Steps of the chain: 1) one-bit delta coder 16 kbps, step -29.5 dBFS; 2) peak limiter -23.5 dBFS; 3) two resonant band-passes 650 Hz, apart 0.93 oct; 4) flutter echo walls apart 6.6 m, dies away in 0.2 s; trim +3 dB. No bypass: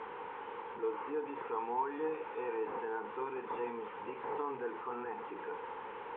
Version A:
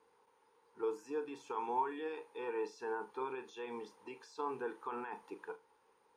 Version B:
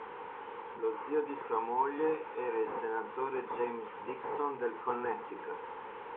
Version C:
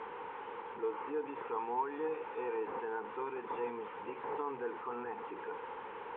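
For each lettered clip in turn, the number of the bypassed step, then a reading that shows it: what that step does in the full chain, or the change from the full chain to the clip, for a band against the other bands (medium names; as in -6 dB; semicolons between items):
1, crest factor change +2.5 dB; 2, mean gain reduction 1.5 dB; 4, echo-to-direct -11.0 dB to none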